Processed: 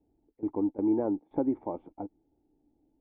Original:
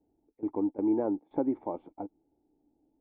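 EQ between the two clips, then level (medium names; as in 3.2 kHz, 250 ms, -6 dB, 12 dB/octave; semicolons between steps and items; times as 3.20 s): distance through air 210 m; bass shelf 130 Hz +7.5 dB; 0.0 dB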